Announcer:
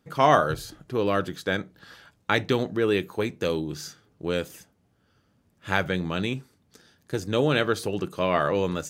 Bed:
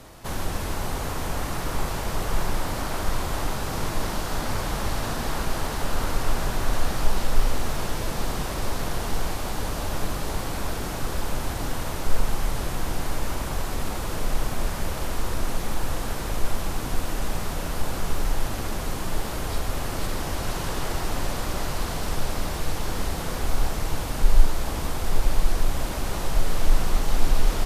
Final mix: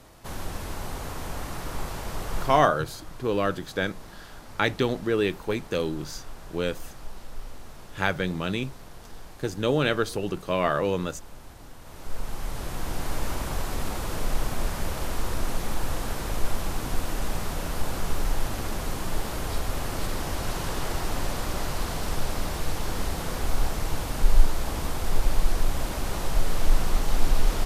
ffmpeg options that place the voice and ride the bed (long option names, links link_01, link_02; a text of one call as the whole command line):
ffmpeg -i stem1.wav -i stem2.wav -filter_complex "[0:a]adelay=2300,volume=-1dB[link_01];[1:a]volume=10.5dB,afade=type=out:start_time=2.43:duration=0.27:silence=0.251189,afade=type=in:start_time=11.81:duration=1.41:silence=0.158489[link_02];[link_01][link_02]amix=inputs=2:normalize=0" out.wav